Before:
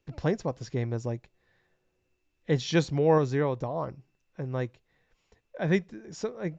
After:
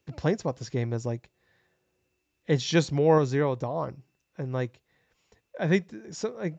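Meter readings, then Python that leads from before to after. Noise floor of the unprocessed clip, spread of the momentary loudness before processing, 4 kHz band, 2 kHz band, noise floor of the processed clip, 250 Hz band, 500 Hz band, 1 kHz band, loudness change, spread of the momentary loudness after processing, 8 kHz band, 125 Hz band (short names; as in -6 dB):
-76 dBFS, 15 LU, +3.0 dB, +2.0 dB, -78 dBFS, +1.5 dB, +1.5 dB, +1.5 dB, +1.5 dB, 15 LU, n/a, +1.5 dB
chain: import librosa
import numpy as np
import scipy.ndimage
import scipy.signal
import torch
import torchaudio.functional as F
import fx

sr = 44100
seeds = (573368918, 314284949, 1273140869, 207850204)

y = scipy.signal.sosfilt(scipy.signal.butter(2, 62.0, 'highpass', fs=sr, output='sos'), x)
y = fx.high_shelf(y, sr, hz=6200.0, db=6.0)
y = y * 10.0 ** (1.5 / 20.0)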